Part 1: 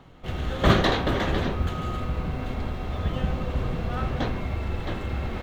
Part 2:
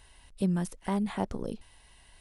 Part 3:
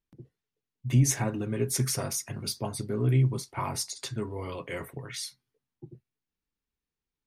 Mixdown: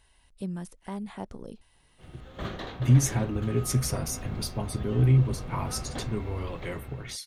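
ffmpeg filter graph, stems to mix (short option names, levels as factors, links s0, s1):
-filter_complex "[0:a]dynaudnorm=f=190:g=7:m=3.98,adelay=1750,volume=0.106[s0];[1:a]volume=0.473[s1];[2:a]lowshelf=f=220:g=7,adelay=1950,volume=0.794[s2];[s0][s1][s2]amix=inputs=3:normalize=0"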